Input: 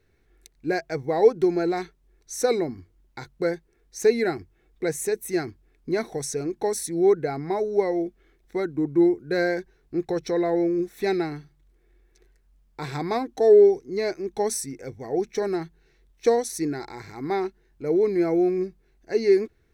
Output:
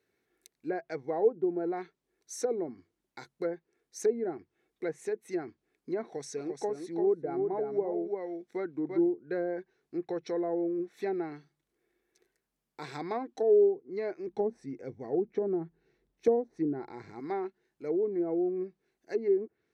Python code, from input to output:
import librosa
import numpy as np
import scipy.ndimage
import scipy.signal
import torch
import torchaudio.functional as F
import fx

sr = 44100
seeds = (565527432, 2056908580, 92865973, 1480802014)

y = fx.echo_single(x, sr, ms=344, db=-5.0, at=(6.03, 9.08))
y = fx.tilt_eq(y, sr, slope=-3.0, at=(14.27, 17.2))
y = scipy.signal.sosfilt(scipy.signal.butter(2, 210.0, 'highpass', fs=sr, output='sos'), y)
y = fx.env_lowpass_down(y, sr, base_hz=650.0, full_db=-18.5)
y = fx.high_shelf(y, sr, hz=9900.0, db=5.5)
y = F.gain(torch.from_numpy(y), -7.5).numpy()